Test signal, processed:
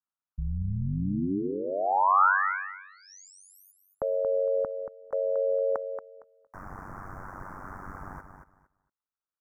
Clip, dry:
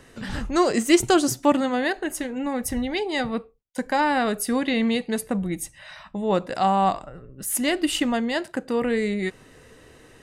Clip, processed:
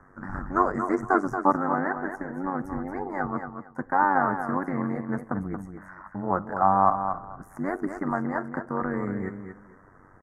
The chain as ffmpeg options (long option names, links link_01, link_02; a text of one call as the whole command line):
ffmpeg -i in.wav -filter_complex "[0:a]acrossover=split=6000[link_01][link_02];[link_02]acompressor=threshold=-33dB:ratio=4:attack=1:release=60[link_03];[link_01][link_03]amix=inputs=2:normalize=0,firequalizer=gain_entry='entry(240,0);entry(460,-6);entry(800,4);entry(1300,10);entry(3700,-25);entry(5600,-17);entry(8200,-22)':delay=0.05:min_phase=1,acrossover=split=350[link_04][link_05];[link_04]alimiter=limit=-23dB:level=0:latency=1:release=270[link_06];[link_06][link_05]amix=inputs=2:normalize=0,tremolo=f=95:d=0.889,asuperstop=centerf=3100:order=4:qfactor=0.68,aecho=1:1:230|460|690:0.398|0.0796|0.0159" out.wav